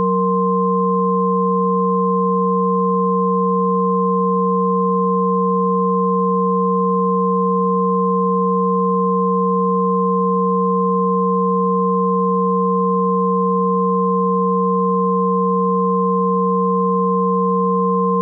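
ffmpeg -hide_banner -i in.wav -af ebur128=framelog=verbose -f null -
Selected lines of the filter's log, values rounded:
Integrated loudness:
  I:         -16.7 LUFS
  Threshold: -26.7 LUFS
Loudness range:
  LRA:         0.0 LU
  Threshold: -36.7 LUFS
  LRA low:   -16.7 LUFS
  LRA high:  -16.7 LUFS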